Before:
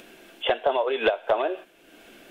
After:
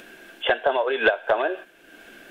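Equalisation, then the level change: peaking EQ 1.6 kHz +10.5 dB 0.28 oct; +1.0 dB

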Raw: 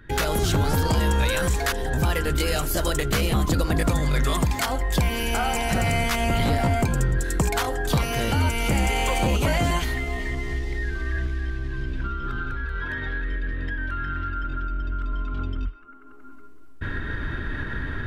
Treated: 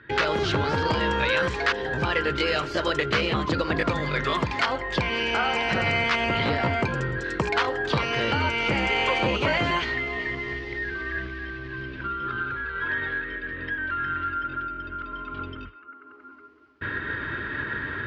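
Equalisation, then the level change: cabinet simulation 120–4200 Hz, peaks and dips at 170 Hz -5 dB, 250 Hz -5 dB, 730 Hz -7 dB, 3.6 kHz -4 dB; bass shelf 330 Hz -6 dB; +4.5 dB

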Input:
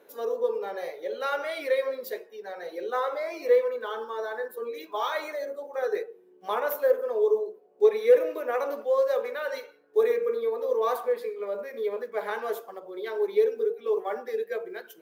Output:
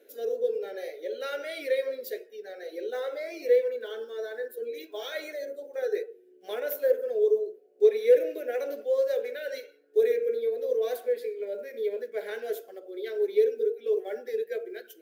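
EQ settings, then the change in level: Butterworth band-stop 1.2 kHz, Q 5.3; static phaser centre 390 Hz, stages 4; 0.0 dB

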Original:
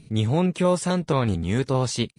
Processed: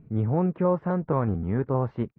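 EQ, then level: low-pass 1.5 kHz 24 dB/octave; -2.5 dB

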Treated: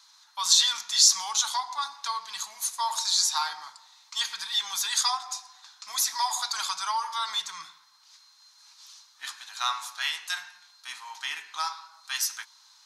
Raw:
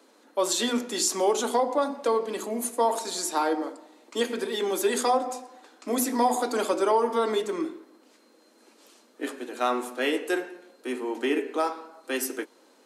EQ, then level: elliptic band-stop 130–960 Hz, stop band 40 dB; high-order bell 4.8 kHz +11.5 dB 1.1 oct; 0.0 dB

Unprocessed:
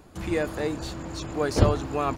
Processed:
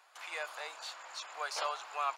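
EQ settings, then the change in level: Bessel high-pass 1.2 kHz, order 6; low-pass 3.7 kHz 6 dB/octave; dynamic bell 1.8 kHz, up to -7 dB, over -55 dBFS, Q 5.2; 0.0 dB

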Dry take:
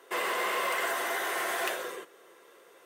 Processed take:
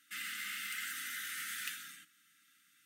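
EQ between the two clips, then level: brick-wall FIR band-stop 310–1200 Hz; amplifier tone stack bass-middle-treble 6-0-2; +10.5 dB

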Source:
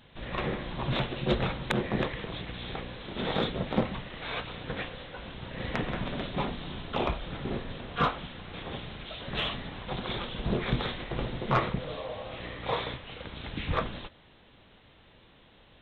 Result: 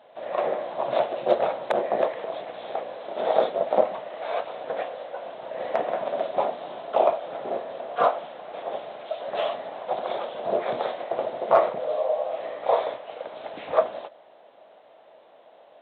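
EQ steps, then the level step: resonant high-pass 640 Hz, resonance Q 4.9; tilt shelf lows +8 dB, about 1.1 kHz; 0.0 dB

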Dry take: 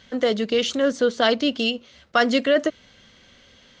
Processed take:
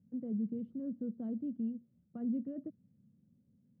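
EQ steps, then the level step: Butterworth band-pass 160 Hz, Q 1.5; -4.5 dB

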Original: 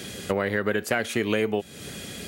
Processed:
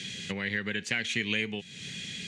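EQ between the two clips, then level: cabinet simulation 180–6400 Hz, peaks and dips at 210 Hz -4 dB, 630 Hz -9 dB, 1.3 kHz -4 dB, 5 kHz -6 dB; high-order bell 630 Hz -16 dB 2.7 oct; +3.5 dB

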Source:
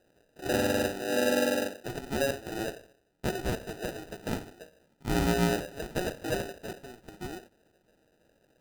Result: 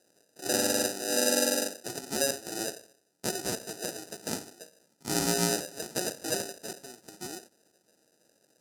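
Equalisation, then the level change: high-pass 170 Hz 12 dB/octave; high-order bell 7.4 kHz +13.5 dB; -2.0 dB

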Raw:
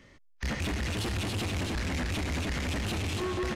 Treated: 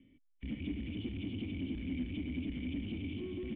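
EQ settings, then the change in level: cascade formant filter i; +2.0 dB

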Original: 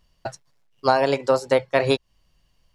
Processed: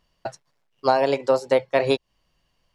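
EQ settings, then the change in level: bass shelf 160 Hz -10 dB; dynamic bell 1.4 kHz, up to -5 dB, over -38 dBFS, Q 1.5; treble shelf 4 kHz -7 dB; +1.5 dB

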